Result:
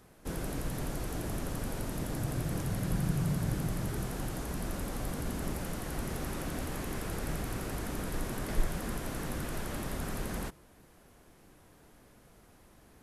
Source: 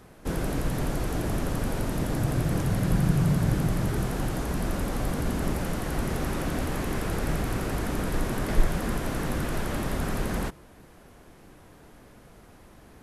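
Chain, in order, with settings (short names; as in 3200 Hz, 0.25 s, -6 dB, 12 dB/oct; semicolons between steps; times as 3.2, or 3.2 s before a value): high shelf 4900 Hz +6 dB; gain -8 dB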